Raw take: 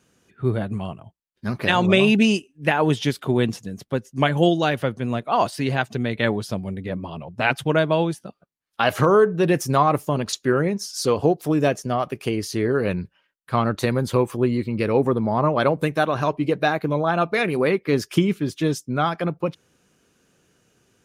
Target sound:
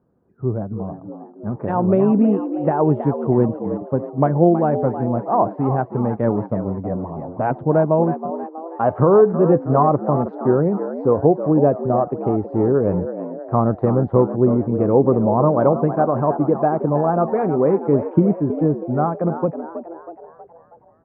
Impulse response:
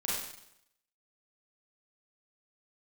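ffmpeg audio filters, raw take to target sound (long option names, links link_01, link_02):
-filter_complex "[0:a]asplit=2[link_01][link_02];[link_02]asplit=6[link_03][link_04][link_05][link_06][link_07][link_08];[link_03]adelay=321,afreqshift=81,volume=-10.5dB[link_09];[link_04]adelay=642,afreqshift=162,volume=-16.3dB[link_10];[link_05]adelay=963,afreqshift=243,volume=-22.2dB[link_11];[link_06]adelay=1284,afreqshift=324,volume=-28dB[link_12];[link_07]adelay=1605,afreqshift=405,volume=-33.9dB[link_13];[link_08]adelay=1926,afreqshift=486,volume=-39.7dB[link_14];[link_09][link_10][link_11][link_12][link_13][link_14]amix=inputs=6:normalize=0[link_15];[link_01][link_15]amix=inputs=2:normalize=0,dynaudnorm=framelen=210:gausssize=21:maxgain=11.5dB,lowpass=frequency=1000:width=0.5412,lowpass=frequency=1000:width=1.3066"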